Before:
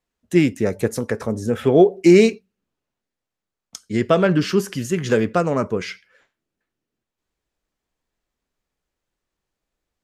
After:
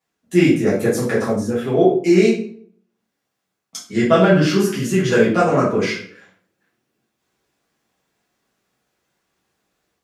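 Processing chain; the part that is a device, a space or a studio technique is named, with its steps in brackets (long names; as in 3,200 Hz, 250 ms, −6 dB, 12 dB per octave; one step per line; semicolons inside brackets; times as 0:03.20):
far laptop microphone (convolution reverb RT60 0.55 s, pre-delay 5 ms, DRR −9 dB; high-pass filter 120 Hz 12 dB per octave; automatic gain control gain up to 4 dB)
level −1 dB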